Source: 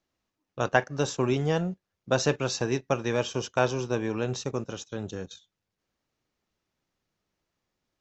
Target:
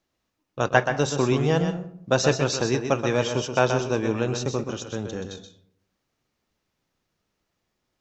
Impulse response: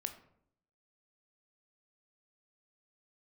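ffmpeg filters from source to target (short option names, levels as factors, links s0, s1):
-filter_complex "[0:a]asplit=2[s0][s1];[1:a]atrim=start_sample=2205,adelay=127[s2];[s1][s2]afir=irnorm=-1:irlink=0,volume=0.562[s3];[s0][s3]amix=inputs=2:normalize=0,volume=1.5"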